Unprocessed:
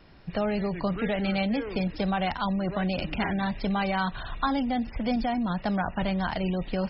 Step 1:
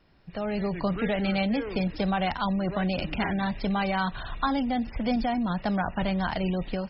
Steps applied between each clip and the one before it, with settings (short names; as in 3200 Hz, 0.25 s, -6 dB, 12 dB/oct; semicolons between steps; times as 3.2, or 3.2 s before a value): AGC gain up to 10 dB; gain -9 dB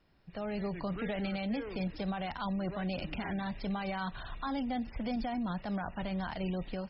limiter -19.5 dBFS, peak gain reduction 6.5 dB; gain -7 dB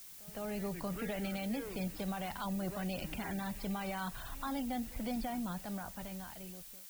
ending faded out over 1.63 s; added noise blue -49 dBFS; pre-echo 0.161 s -20.5 dB; gain -3 dB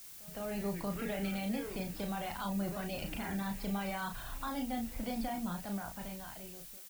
doubler 35 ms -5 dB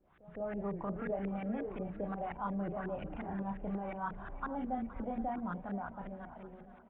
LFO low-pass saw up 5.6 Hz 360–1800 Hz; feedback echo 0.469 s, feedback 59%, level -16 dB; downsampling 8000 Hz; gain -2.5 dB